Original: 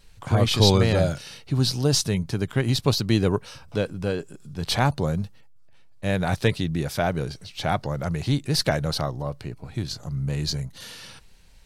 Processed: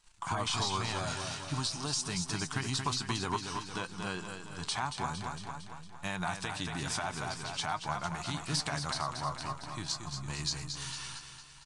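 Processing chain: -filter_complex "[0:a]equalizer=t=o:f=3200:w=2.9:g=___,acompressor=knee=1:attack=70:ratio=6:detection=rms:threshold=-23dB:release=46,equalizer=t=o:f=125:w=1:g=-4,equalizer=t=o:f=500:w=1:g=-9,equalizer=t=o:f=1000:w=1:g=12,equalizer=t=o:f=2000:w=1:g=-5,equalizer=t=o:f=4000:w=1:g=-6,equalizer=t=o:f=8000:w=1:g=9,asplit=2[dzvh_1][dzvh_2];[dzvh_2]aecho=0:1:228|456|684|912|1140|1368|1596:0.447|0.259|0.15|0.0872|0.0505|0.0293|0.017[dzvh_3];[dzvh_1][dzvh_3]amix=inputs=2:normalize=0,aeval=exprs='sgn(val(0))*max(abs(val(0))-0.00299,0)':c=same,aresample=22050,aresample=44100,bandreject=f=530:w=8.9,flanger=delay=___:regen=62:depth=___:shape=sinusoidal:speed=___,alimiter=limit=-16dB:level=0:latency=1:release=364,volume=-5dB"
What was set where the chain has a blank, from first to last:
12, 5.6, 2.4, 0.49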